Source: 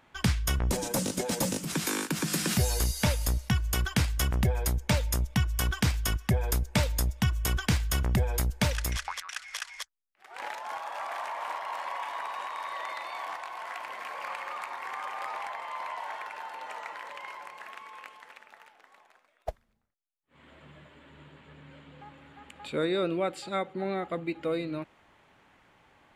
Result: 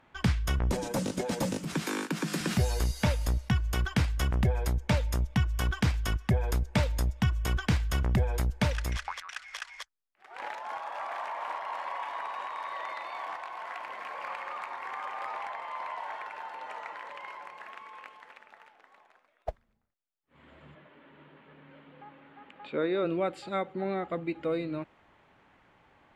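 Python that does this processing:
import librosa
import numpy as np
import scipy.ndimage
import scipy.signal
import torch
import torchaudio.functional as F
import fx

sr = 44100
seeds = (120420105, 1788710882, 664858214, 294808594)

y = fx.highpass(x, sr, hz=150.0, slope=24, at=(1.82, 2.41))
y = fx.bandpass_edges(y, sr, low_hz=200.0, high_hz=3500.0, at=(20.74, 23.04), fade=0.02)
y = fx.lowpass(y, sr, hz=2800.0, slope=6)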